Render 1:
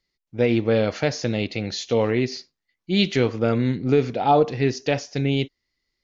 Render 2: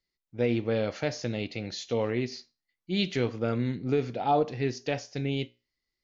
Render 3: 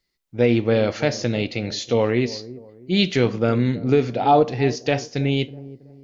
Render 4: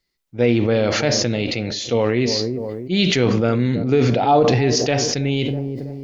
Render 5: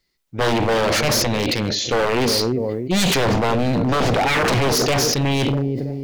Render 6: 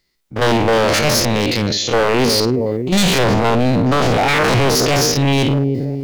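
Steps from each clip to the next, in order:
feedback comb 60 Hz, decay 0.3 s, harmonics all, mix 40%; trim -5 dB
feedback echo behind a low-pass 324 ms, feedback 36%, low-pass 700 Hz, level -16 dB; trim +9 dB
decay stretcher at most 20 dB/s
wavefolder -17 dBFS; trim +4 dB
spectrogram pixelated in time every 50 ms; trim +5 dB

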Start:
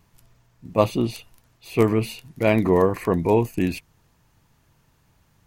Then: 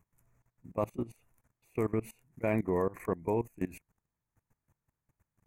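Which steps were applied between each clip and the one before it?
high-order bell 3.9 kHz -16 dB 1.1 oct; level held to a coarse grid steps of 20 dB; trim -8.5 dB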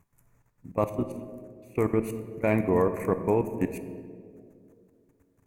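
Chebyshev shaper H 6 -38 dB, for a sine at -16.5 dBFS; on a send at -9 dB: reverberation RT60 2.3 s, pre-delay 4 ms; on the sum: trim +6 dB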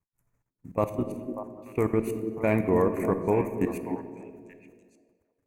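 expander -54 dBFS; repeats whose band climbs or falls 294 ms, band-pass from 300 Hz, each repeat 1.4 oct, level -5 dB

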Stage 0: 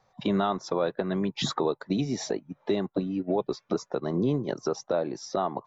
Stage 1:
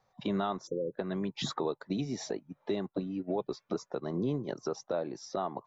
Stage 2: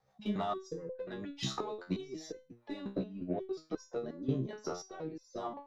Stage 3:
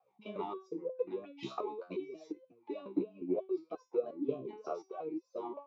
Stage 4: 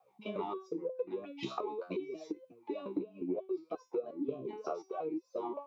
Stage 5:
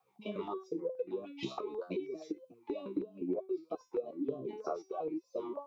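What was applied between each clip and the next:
spectral selection erased 0.67–0.94 s, 560–5700 Hz; trim -6 dB
Chebyshev shaper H 6 -30 dB, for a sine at -21 dBFS; rotary cabinet horn 7 Hz, later 1 Hz, at 1.17 s; resonator arpeggio 5.6 Hz 66–510 Hz; trim +9.5 dB
talking filter a-u 3.2 Hz; trim +10.5 dB
compression 3:1, threshold -40 dBFS, peak gain reduction 10.5 dB; trim +5.5 dB
step-sequenced notch 6.3 Hz 610–3000 Hz; trim +1 dB

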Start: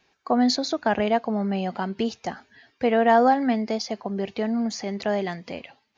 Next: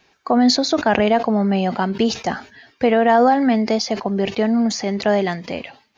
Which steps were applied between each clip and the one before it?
loudness maximiser +13 dB; decay stretcher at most 150 dB/s; trim -5.5 dB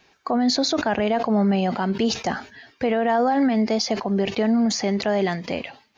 peak limiter -13 dBFS, peak gain reduction 11.5 dB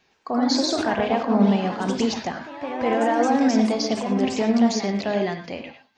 ever faster or slower copies 109 ms, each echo +2 st, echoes 3, each echo -6 dB; on a send at -5.5 dB: reverberation, pre-delay 3 ms; on the sum: upward expansion 1.5:1, over -27 dBFS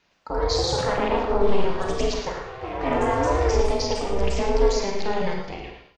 ring modulator 200 Hz; delay 111 ms -11 dB; Schroeder reverb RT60 0.58 s, combs from 33 ms, DRR 4 dB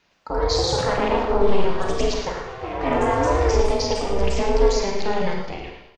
feedback delay 199 ms, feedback 36%, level -18.5 dB; trim +2 dB

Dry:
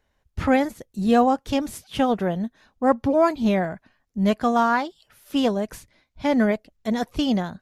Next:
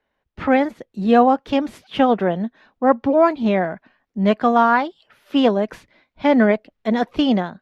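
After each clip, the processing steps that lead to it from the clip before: three-band isolator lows -13 dB, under 180 Hz, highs -20 dB, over 3.9 kHz; level rider gain up to 7 dB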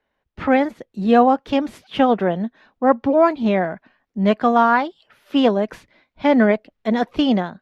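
no audible change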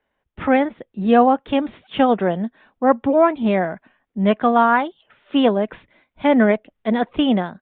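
resampled via 8 kHz

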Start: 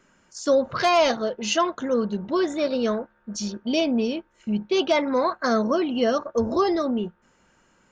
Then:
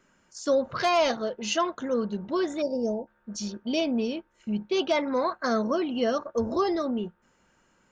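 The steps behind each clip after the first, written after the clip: time-frequency box 2.62–3.07 s, 950–4600 Hz -27 dB; trim -4 dB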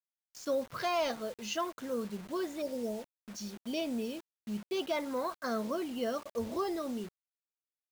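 bit crusher 7-bit; trim -8.5 dB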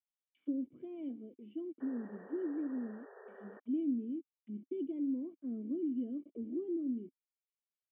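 auto-wah 330–3200 Hz, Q 3.1, down, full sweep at -37.5 dBFS; painted sound noise, 1.80–3.60 s, 380–1900 Hz -39 dBFS; cascade formant filter i; trim +10 dB

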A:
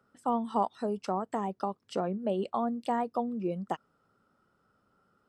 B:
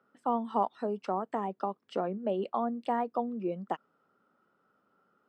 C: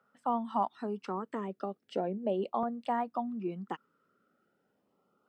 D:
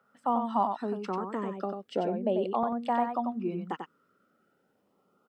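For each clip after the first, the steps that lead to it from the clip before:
three-band isolator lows -19 dB, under 170 Hz, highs -14 dB, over 3.7 kHz
LFO notch saw up 0.38 Hz 310–1800 Hz
delay 93 ms -6 dB; trim +3 dB

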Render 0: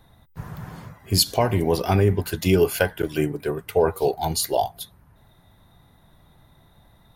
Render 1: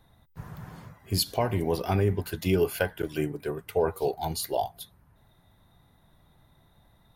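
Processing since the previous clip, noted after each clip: dynamic bell 6.9 kHz, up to -5 dB, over -41 dBFS, Q 1.2; trim -6 dB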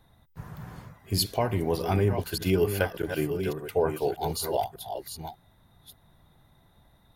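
chunks repeated in reverse 595 ms, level -7.5 dB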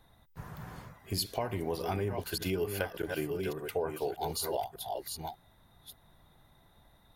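peaking EQ 120 Hz -4.5 dB 2.5 oct; compression 2.5:1, threshold -32 dBFS, peak gain reduction 8 dB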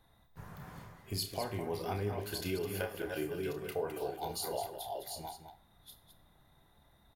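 on a send: loudspeakers at several distances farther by 10 m -7 dB, 72 m -9 dB; on the sum: Schroeder reverb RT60 0.4 s, combs from 32 ms, DRR 13 dB; trim -4.5 dB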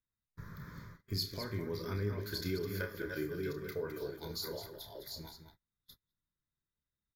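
gate -53 dBFS, range -29 dB; static phaser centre 2.8 kHz, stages 6; trim +2 dB

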